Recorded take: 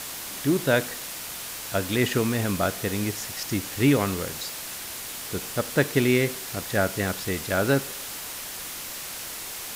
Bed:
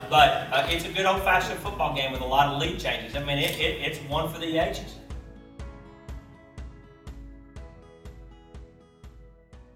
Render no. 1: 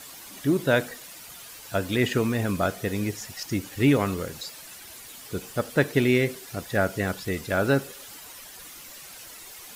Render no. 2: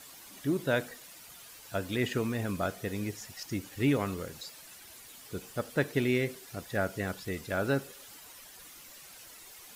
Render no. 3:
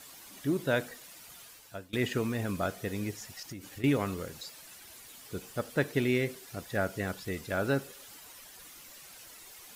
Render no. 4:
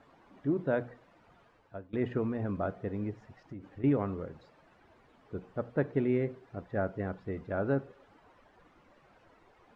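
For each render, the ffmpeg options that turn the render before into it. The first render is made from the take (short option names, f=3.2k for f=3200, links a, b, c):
-af "afftdn=nr=11:nf=-36"
-af "volume=-7dB"
-filter_complex "[0:a]asettb=1/sr,asplit=3[a][b][c];[a]atrim=end=3.244[d];[b]atrim=start=3.24:end=3.84,asetpts=PTS-STARTPTS,afade=t=in:d=0.004:c=qsin,afade=t=out:st=0.596:d=0.004:c=qsin,acompressor=threshold=-38dB:ratio=12:attack=3.2:release=140:knee=1:detection=peak[e];[c]atrim=start=3.836[f];[d][e]acrossfade=d=0.004:c1=hsin:c2=qsin[g];[g][f]acrossfade=d=0.004:c1=qsin:c2=hsin,asplit=2[h][i];[h]atrim=end=1.93,asetpts=PTS-STARTPTS,afade=t=out:st=1.41:d=0.52:silence=0.0668344[j];[i]atrim=start=1.93,asetpts=PTS-STARTPTS,afade=t=in:d=0.004:c=hsin:silence=0.0668344[k];[j][k]concat=n=2:v=0:a=1"
-af "lowpass=1.1k,bandreject=f=60:t=h:w=6,bandreject=f=120:t=h:w=6,bandreject=f=180:t=h:w=6"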